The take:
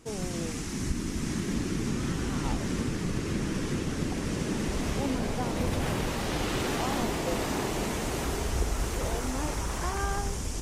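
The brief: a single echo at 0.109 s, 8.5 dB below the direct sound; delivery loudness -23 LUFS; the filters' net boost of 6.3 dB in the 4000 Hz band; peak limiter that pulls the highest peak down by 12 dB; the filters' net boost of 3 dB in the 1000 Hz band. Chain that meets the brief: bell 1000 Hz +3.5 dB; bell 4000 Hz +8 dB; limiter -26.5 dBFS; echo 0.109 s -8.5 dB; gain +12 dB

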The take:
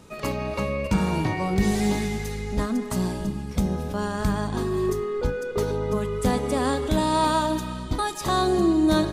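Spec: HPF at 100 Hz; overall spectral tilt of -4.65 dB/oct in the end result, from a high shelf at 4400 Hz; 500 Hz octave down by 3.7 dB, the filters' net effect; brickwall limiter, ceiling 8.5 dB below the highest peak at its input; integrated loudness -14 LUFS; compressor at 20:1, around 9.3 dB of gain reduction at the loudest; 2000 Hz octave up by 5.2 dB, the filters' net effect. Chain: HPF 100 Hz; bell 500 Hz -5.5 dB; bell 2000 Hz +7.5 dB; high shelf 4400 Hz -3.5 dB; compressor 20:1, threshold -27 dBFS; gain +20 dB; limiter -5.5 dBFS

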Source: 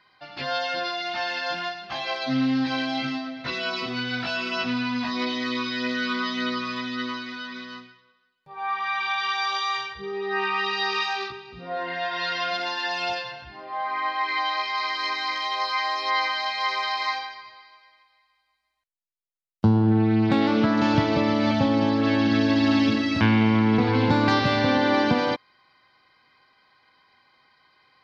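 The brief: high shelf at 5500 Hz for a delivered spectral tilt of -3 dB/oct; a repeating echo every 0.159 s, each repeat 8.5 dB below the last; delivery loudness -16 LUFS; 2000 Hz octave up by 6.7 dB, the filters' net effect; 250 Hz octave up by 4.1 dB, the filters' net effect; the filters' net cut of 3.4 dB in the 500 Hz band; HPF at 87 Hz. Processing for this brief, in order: HPF 87 Hz; bell 250 Hz +6.5 dB; bell 500 Hz -7.5 dB; bell 2000 Hz +9 dB; high shelf 5500 Hz -4 dB; feedback echo 0.159 s, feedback 38%, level -8.5 dB; gain +3.5 dB

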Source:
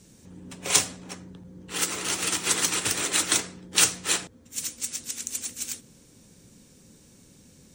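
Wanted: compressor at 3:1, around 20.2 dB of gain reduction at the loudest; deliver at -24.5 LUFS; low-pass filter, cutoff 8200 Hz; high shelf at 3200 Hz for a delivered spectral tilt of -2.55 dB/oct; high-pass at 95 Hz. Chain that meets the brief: HPF 95 Hz; LPF 8200 Hz; high shelf 3200 Hz +9 dB; compressor 3:1, threshold -39 dBFS; gain +12 dB

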